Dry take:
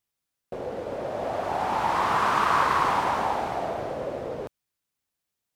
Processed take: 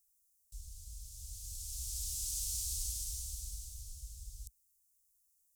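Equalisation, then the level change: inverse Chebyshev band-stop 210–1800 Hz, stop band 70 dB; +11.5 dB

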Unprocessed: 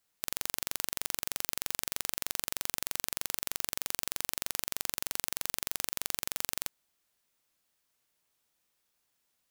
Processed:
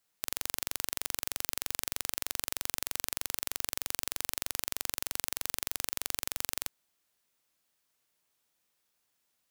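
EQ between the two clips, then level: bass shelf 72 Hz -4.5 dB; 0.0 dB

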